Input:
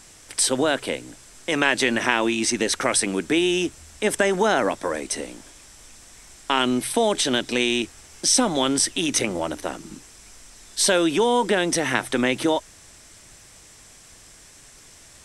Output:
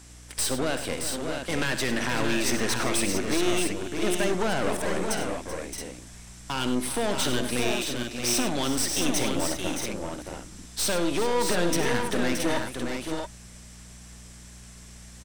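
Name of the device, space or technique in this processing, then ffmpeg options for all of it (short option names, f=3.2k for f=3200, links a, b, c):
valve amplifier with mains hum: -filter_complex "[0:a]aeval=exprs='(tanh(14.1*val(0)+0.7)-tanh(0.7))/14.1':c=same,aeval=exprs='val(0)+0.00355*(sin(2*PI*60*n/s)+sin(2*PI*2*60*n/s)/2+sin(2*PI*3*60*n/s)/3+sin(2*PI*4*60*n/s)/4+sin(2*PI*5*60*n/s)/5)':c=same,asettb=1/sr,asplit=3[a][b][c];[a]atrim=end=7.714[d];[b]atrim=start=7.71:end=8.37,asetpts=PTS-STARTPTS,afade=t=in:d=0.004:c=qsin,afade=t=out:st=0.656:d=0.004:c=qsin,highpass=380[e];[c]atrim=start=8.366[f];[d][e]acrossfade=d=0.004:c1=hsin:c2=qsin[g];[g][f]acrossfade=d=0.004:c1=qsin:c2=hsin,aecho=1:1:64|99|384|622|672:0.237|0.266|0.224|0.473|0.473"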